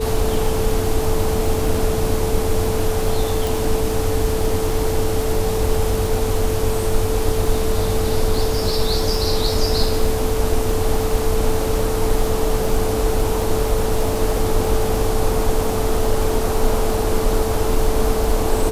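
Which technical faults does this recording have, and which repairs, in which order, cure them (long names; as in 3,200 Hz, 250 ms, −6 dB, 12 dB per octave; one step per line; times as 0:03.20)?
surface crackle 39 per second −23 dBFS
whistle 440 Hz −22 dBFS
0:03.47: click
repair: click removal
notch filter 440 Hz, Q 30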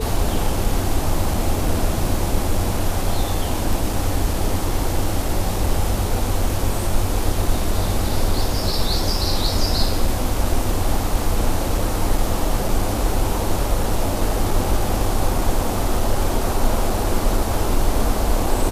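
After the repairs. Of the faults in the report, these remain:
none of them is left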